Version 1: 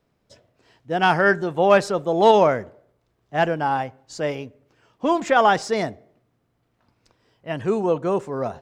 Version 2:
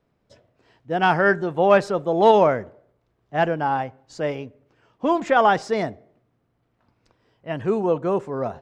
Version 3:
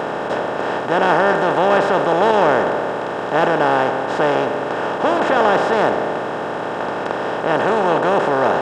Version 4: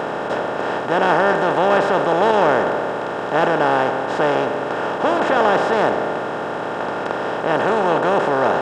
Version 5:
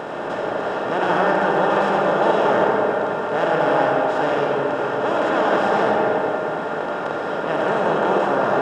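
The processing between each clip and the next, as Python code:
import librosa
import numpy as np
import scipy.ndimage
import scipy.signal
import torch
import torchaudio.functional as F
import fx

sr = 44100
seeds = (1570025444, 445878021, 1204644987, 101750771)

y1 = fx.high_shelf(x, sr, hz=4500.0, db=-10.0)
y2 = fx.bin_compress(y1, sr, power=0.2)
y2 = y2 * librosa.db_to_amplitude(-5.0)
y3 = y2 + 10.0 ** (-36.0 / 20.0) * np.sin(2.0 * np.pi * 1400.0 * np.arange(len(y2)) / sr)
y3 = y3 * librosa.db_to_amplitude(-1.0)
y4 = fx.rev_freeverb(y3, sr, rt60_s=2.9, hf_ratio=0.45, predelay_ms=25, drr_db=-2.0)
y4 = y4 * librosa.db_to_amplitude(-6.0)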